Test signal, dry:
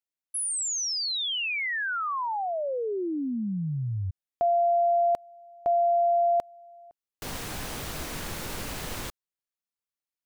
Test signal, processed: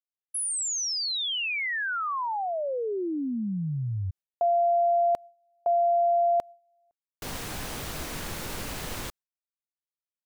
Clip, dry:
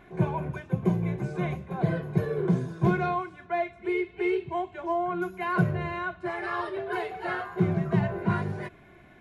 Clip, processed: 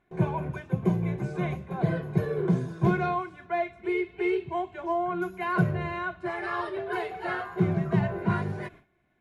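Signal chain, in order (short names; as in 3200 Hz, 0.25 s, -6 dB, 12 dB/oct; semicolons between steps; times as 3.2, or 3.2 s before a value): gate with hold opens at -39 dBFS, closes at -46 dBFS, hold 72 ms, range -18 dB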